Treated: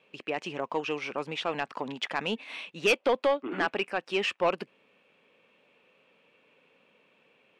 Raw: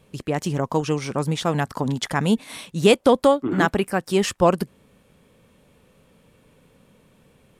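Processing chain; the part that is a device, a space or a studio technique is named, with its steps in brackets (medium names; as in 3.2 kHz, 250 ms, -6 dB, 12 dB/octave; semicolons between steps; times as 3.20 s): intercom (band-pass 380–3600 Hz; peaking EQ 2.6 kHz +11 dB 0.5 oct; saturation -11 dBFS, distortion -13 dB); trim -5.5 dB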